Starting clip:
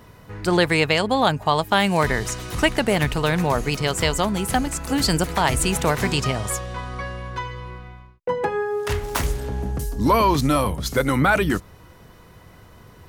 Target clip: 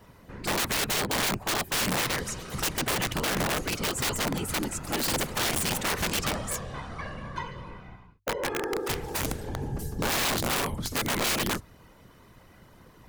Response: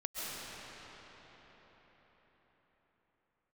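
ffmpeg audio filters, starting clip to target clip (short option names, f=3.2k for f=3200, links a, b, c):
-af "afftfilt=real='hypot(re,im)*cos(2*PI*random(0))':imag='hypot(re,im)*sin(2*PI*random(1))':win_size=512:overlap=0.75,aeval=exprs='(mod(11.9*val(0)+1,2)-1)/11.9':c=same,bandreject=f=50:t=h:w=6,bandreject=f=100:t=h:w=6"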